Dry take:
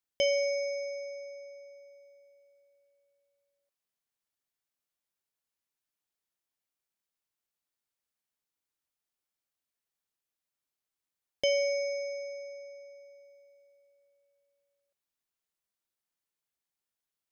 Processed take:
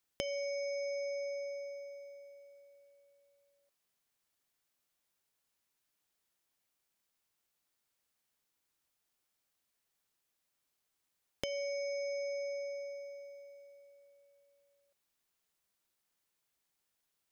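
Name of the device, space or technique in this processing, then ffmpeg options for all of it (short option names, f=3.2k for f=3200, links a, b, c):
serial compression, peaks first: -af "acompressor=threshold=-37dB:ratio=6,acompressor=threshold=-43dB:ratio=3,volume=6.5dB"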